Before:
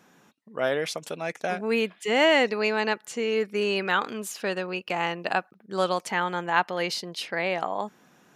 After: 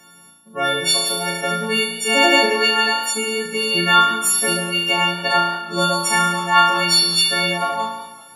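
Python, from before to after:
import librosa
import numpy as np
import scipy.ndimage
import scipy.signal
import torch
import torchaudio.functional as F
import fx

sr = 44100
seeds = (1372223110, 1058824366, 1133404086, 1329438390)

y = fx.freq_snap(x, sr, grid_st=4)
y = fx.room_flutter(y, sr, wall_m=6.0, rt60_s=0.97)
y = fx.echo_warbled(y, sr, ms=187, feedback_pct=51, rate_hz=2.8, cents=83, wet_db=-21.0)
y = y * 10.0 ** (4.5 / 20.0)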